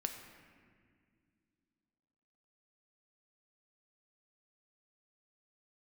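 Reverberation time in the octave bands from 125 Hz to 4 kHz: 2.8, 3.3, 2.4, 1.8, 1.9, 1.3 seconds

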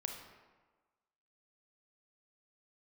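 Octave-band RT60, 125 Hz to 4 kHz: 1.1, 1.3, 1.3, 1.4, 1.1, 0.80 seconds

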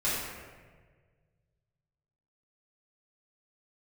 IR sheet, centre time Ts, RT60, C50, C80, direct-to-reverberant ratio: 98 ms, 1.5 s, −1.0 dB, 1.0 dB, −11.5 dB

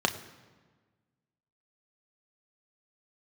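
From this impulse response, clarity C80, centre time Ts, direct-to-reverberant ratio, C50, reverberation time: 14.5 dB, 12 ms, 5.0 dB, 13.0 dB, 1.4 s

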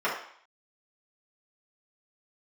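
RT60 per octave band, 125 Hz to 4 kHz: 0.25, 0.50, 0.55, 0.60, 0.60, 0.60 seconds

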